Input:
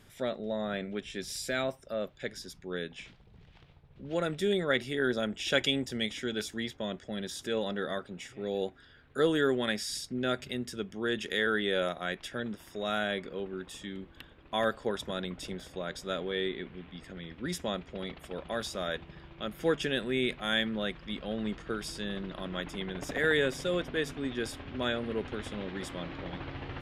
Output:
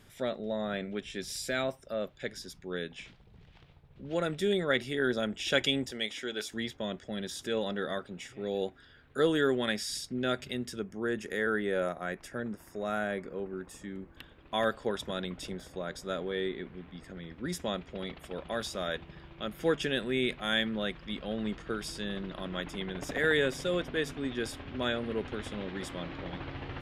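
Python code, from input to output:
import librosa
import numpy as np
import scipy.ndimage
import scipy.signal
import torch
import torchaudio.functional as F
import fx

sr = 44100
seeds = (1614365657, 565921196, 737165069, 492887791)

y = fx.bass_treble(x, sr, bass_db=-13, treble_db=-1, at=(5.91, 6.52))
y = fx.peak_eq(y, sr, hz=3400.0, db=-14.0, octaves=0.82, at=(10.79, 14.17))
y = fx.peak_eq(y, sr, hz=3000.0, db=-5.5, octaves=1.0, at=(15.49, 17.6))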